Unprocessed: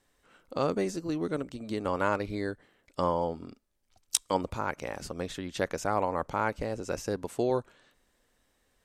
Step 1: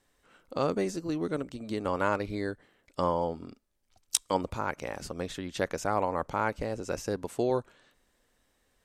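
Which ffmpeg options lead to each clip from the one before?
ffmpeg -i in.wav -af anull out.wav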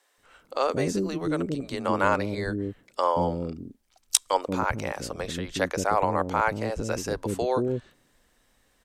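ffmpeg -i in.wav -filter_complex "[0:a]acrossover=split=410[link_01][link_02];[link_01]adelay=180[link_03];[link_03][link_02]amix=inputs=2:normalize=0,volume=6dB" out.wav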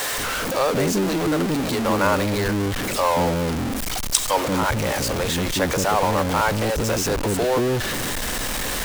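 ffmpeg -i in.wav -af "aeval=exprs='val(0)+0.5*0.106*sgn(val(0))':channel_layout=same" out.wav

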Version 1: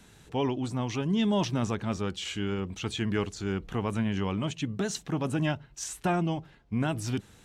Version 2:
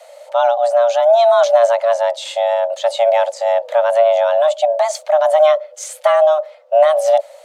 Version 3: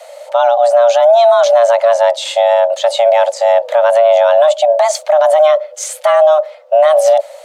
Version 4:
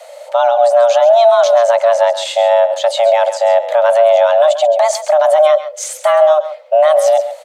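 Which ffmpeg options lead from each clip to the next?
ffmpeg -i in.wav -af "equalizer=frequency=130:width_type=o:width=1.6:gain=13.5,afreqshift=460,volume=7.5dB" out.wav
ffmpeg -i in.wav -af "alimiter=level_in=7.5dB:limit=-1dB:release=50:level=0:latency=1,volume=-1dB" out.wav
ffmpeg -i in.wav -af "aecho=1:1:134:0.237,volume=-1dB" out.wav

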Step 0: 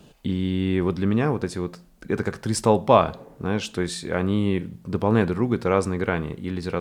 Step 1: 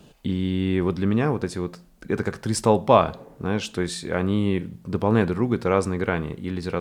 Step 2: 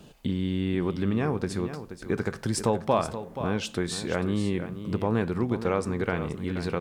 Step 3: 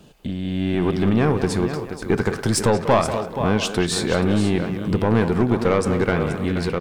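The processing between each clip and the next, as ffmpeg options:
ffmpeg -i in.wav -af anull out.wav
ffmpeg -i in.wav -af "acompressor=threshold=-26dB:ratio=2,aecho=1:1:478:0.282" out.wav
ffmpeg -i in.wav -filter_complex "[0:a]aeval=exprs='(tanh(7.94*val(0)+0.3)-tanh(0.3))/7.94':channel_layout=same,asplit=2[link_01][link_02];[link_02]adelay=190,highpass=300,lowpass=3400,asoftclip=type=hard:threshold=-25.5dB,volume=-7dB[link_03];[link_01][link_03]amix=inputs=2:normalize=0,dynaudnorm=framelen=440:gausssize=3:maxgain=8dB,volume=2dB" out.wav

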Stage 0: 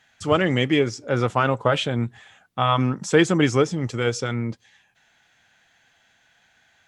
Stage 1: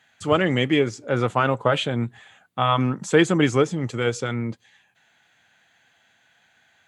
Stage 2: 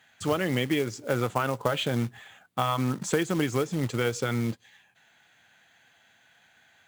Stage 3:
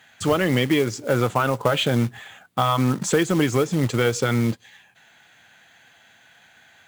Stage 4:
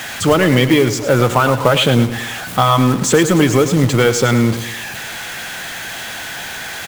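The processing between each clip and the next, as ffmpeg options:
ffmpeg -i in.wav -af "highpass=93,equalizer=frequency=5400:width_type=o:width=0.26:gain=-8.5" out.wav
ffmpeg -i in.wav -af "acompressor=threshold=-22dB:ratio=8,acrusher=bits=4:mode=log:mix=0:aa=0.000001" out.wav
ffmpeg -i in.wav -af "asoftclip=type=tanh:threshold=-15.5dB,volume=7.5dB" out.wav
ffmpeg -i in.wav -af "aeval=exprs='val(0)+0.5*0.0355*sgn(val(0))':channel_layout=same,aecho=1:1:105|210|315|420:0.266|0.112|0.0469|0.0197,volume=6.5dB" out.wav

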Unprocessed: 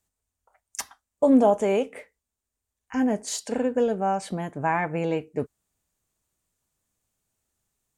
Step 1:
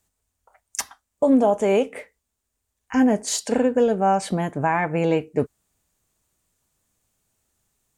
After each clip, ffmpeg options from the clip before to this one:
ffmpeg -i in.wav -af "alimiter=limit=-16dB:level=0:latency=1:release=460,volume=6.5dB" out.wav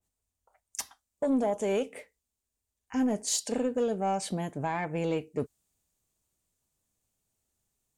ffmpeg -i in.wav -af "equalizer=frequency=1500:width_type=o:width=1.4:gain=-4.5,asoftclip=type=tanh:threshold=-11dB,adynamicequalizer=threshold=0.0126:dfrequency=2300:dqfactor=0.7:tfrequency=2300:tqfactor=0.7:attack=5:release=100:ratio=0.375:range=2.5:mode=boostabove:tftype=highshelf,volume=-8dB" out.wav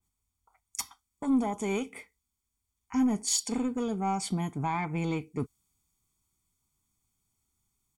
ffmpeg -i in.wav -af "aecho=1:1:0.9:0.84,volume=-1dB" out.wav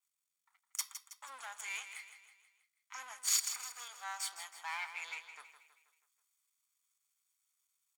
ffmpeg -i in.wav -filter_complex "[0:a]aeval=exprs='if(lt(val(0),0),0.251*val(0),val(0))':channel_layout=same,highpass=frequency=1200:width=0.5412,highpass=frequency=1200:width=1.3066,asplit=2[link_01][link_02];[link_02]aecho=0:1:161|322|483|644|805:0.299|0.146|0.0717|0.0351|0.0172[link_03];[link_01][link_03]amix=inputs=2:normalize=0,volume=1dB" out.wav

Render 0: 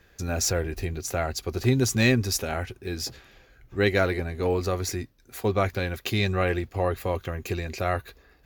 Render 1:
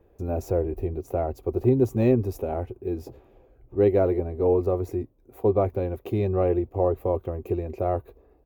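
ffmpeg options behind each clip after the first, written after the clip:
ffmpeg -i in.wav -af "firequalizer=gain_entry='entry(110,0);entry(160,-4);entry(350,6);entry(980,-2);entry(1600,-20);entry(2500,-16);entry(4500,-27);entry(15000,-10)':delay=0.05:min_phase=1" out.wav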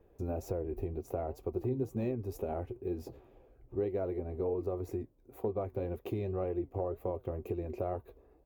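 ffmpeg -i in.wav -af "acompressor=threshold=-27dB:ratio=5,flanger=delay=4:depth=4.6:regen=78:speed=2:shape=triangular" out.wav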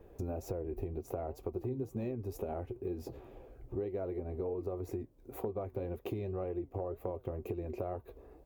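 ffmpeg -i in.wav -af "acompressor=threshold=-47dB:ratio=2.5,volume=7.5dB" out.wav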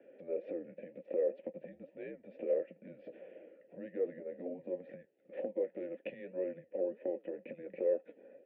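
ffmpeg -i in.wav -filter_complex "[0:a]highpass=frequency=460:width_type=q:width=0.5412,highpass=frequency=460:width_type=q:width=1.307,lowpass=frequency=3400:width_type=q:width=0.5176,lowpass=frequency=3400:width_type=q:width=0.7071,lowpass=frequency=3400:width_type=q:width=1.932,afreqshift=-190,asplit=3[link_01][link_02][link_03];[link_01]bandpass=frequency=530:width_type=q:width=8,volume=0dB[link_04];[link_02]bandpass=frequency=1840:width_type=q:width=8,volume=-6dB[link_05];[link_03]bandpass=frequency=2480:width_type=q:width=8,volume=-9dB[link_06];[link_04][link_05][link_06]amix=inputs=3:normalize=0,volume=15dB" out.wav

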